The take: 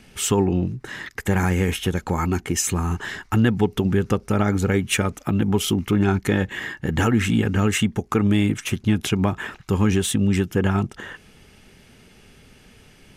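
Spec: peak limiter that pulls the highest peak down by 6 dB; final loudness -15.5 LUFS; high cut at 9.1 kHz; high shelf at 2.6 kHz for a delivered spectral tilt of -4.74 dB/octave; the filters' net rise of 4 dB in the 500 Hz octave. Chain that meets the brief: low-pass 9.1 kHz; peaking EQ 500 Hz +5 dB; treble shelf 2.6 kHz +6.5 dB; trim +6 dB; peak limiter -4 dBFS

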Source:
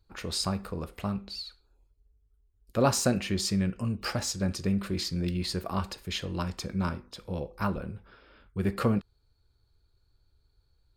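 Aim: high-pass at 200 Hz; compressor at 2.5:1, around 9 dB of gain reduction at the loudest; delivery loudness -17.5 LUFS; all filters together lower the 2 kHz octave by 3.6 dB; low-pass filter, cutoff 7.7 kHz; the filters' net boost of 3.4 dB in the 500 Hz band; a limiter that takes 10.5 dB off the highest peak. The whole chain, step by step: high-pass 200 Hz; low-pass 7.7 kHz; peaking EQ 500 Hz +4.5 dB; peaking EQ 2 kHz -5.5 dB; compression 2.5:1, threshold -32 dBFS; trim +21.5 dB; peak limiter -6.5 dBFS

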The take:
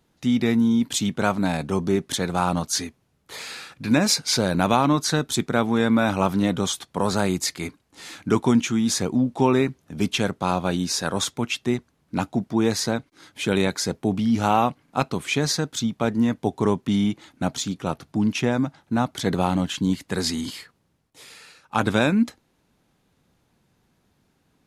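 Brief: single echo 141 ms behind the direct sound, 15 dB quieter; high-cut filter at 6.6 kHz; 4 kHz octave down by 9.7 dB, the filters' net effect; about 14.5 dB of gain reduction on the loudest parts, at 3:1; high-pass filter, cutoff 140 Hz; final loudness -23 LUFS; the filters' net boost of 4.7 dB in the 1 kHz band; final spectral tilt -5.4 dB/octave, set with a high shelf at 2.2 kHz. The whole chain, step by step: high-pass 140 Hz; low-pass 6.6 kHz; peaking EQ 1 kHz +7.5 dB; treble shelf 2.2 kHz -5.5 dB; peaking EQ 4 kHz -6.5 dB; compression 3:1, threshold -32 dBFS; delay 141 ms -15 dB; trim +11 dB

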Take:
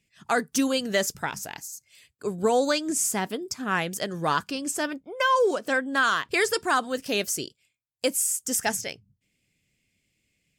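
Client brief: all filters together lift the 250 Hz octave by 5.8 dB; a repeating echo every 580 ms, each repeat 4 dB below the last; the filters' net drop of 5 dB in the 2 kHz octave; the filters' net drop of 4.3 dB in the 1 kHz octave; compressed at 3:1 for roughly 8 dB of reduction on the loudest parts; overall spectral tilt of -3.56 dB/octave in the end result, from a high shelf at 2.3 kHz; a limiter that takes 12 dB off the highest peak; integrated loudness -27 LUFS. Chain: peaking EQ 250 Hz +7 dB; peaking EQ 1 kHz -5 dB; peaking EQ 2 kHz -9 dB; treble shelf 2.3 kHz +8 dB; compression 3:1, threshold -25 dBFS; peak limiter -21 dBFS; feedback delay 580 ms, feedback 63%, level -4 dB; trim +2.5 dB

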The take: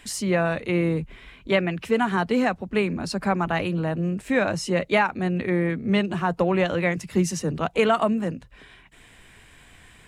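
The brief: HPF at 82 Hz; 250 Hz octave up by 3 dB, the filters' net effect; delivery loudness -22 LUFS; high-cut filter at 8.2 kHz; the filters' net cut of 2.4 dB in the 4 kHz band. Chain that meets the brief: high-pass 82 Hz; low-pass 8.2 kHz; peaking EQ 250 Hz +4.5 dB; peaking EQ 4 kHz -3.5 dB; trim +0.5 dB

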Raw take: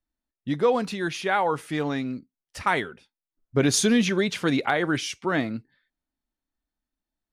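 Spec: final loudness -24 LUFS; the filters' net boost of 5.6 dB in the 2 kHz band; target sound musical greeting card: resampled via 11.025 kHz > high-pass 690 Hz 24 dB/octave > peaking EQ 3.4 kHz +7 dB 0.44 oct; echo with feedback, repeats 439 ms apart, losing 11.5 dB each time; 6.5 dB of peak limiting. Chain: peaking EQ 2 kHz +6.5 dB; peak limiter -12.5 dBFS; feedback delay 439 ms, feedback 27%, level -11.5 dB; resampled via 11.025 kHz; high-pass 690 Hz 24 dB/octave; peaking EQ 3.4 kHz +7 dB 0.44 oct; trim +2.5 dB

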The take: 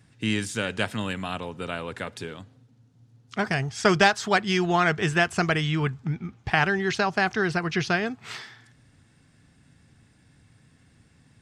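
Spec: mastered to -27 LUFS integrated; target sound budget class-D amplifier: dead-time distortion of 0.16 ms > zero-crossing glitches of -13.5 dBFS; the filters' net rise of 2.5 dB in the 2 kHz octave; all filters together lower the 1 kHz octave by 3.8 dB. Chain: peaking EQ 1 kHz -7.5 dB; peaking EQ 2 kHz +6 dB; dead-time distortion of 0.16 ms; zero-crossing glitches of -13.5 dBFS; trim -2 dB

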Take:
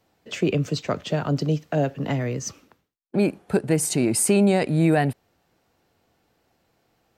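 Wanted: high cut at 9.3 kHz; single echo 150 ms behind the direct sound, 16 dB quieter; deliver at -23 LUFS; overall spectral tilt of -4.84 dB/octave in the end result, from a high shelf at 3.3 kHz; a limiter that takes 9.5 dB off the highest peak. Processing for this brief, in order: low-pass 9.3 kHz; treble shelf 3.3 kHz +5 dB; peak limiter -17.5 dBFS; delay 150 ms -16 dB; trim +4.5 dB

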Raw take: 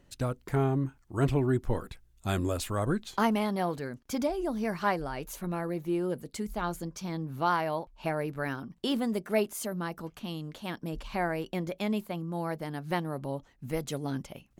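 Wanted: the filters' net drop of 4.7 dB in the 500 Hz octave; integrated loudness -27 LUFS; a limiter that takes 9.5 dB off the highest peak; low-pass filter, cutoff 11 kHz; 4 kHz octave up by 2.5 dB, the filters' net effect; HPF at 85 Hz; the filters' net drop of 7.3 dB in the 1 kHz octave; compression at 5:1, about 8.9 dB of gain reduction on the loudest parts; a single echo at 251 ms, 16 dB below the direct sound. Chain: high-pass 85 Hz; low-pass 11 kHz; peaking EQ 500 Hz -4 dB; peaking EQ 1 kHz -8.5 dB; peaking EQ 4 kHz +4 dB; compression 5:1, threshold -34 dBFS; peak limiter -31 dBFS; delay 251 ms -16 dB; trim +14 dB

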